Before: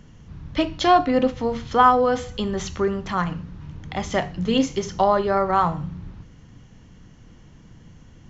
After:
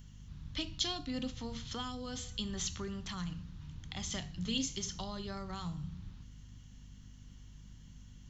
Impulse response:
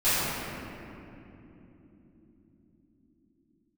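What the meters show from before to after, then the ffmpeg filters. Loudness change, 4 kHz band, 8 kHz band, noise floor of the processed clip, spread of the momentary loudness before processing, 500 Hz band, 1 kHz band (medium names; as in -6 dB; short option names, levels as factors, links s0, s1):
-17.5 dB, -6.0 dB, no reading, -54 dBFS, 15 LU, -25.0 dB, -28.0 dB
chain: -filter_complex "[0:a]aexciter=amount=2.9:drive=2.6:freq=3100,equalizer=f=480:w=0.64:g=-11,acrossover=split=360|3000[s0][s1][s2];[s1]acompressor=threshold=0.0141:ratio=6[s3];[s0][s3][s2]amix=inputs=3:normalize=0,aeval=exprs='val(0)+0.00631*(sin(2*PI*50*n/s)+sin(2*PI*2*50*n/s)/2+sin(2*PI*3*50*n/s)/3+sin(2*PI*4*50*n/s)/4+sin(2*PI*5*50*n/s)/5)':c=same,volume=0.355"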